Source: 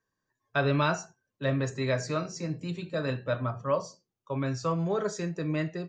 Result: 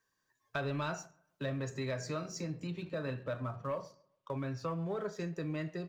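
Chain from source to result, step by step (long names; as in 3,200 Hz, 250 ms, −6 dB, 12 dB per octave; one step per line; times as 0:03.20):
0:02.67–0:05.20: low-pass filter 3,700 Hz 12 dB per octave
leveller curve on the samples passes 1
downward compressor 2.5 to 1, threshold −37 dBFS, peak gain reduction 11.5 dB
feedback echo with a low-pass in the loop 135 ms, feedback 28%, low-pass 1,800 Hz, level −23 dB
one half of a high-frequency compander encoder only
level −2 dB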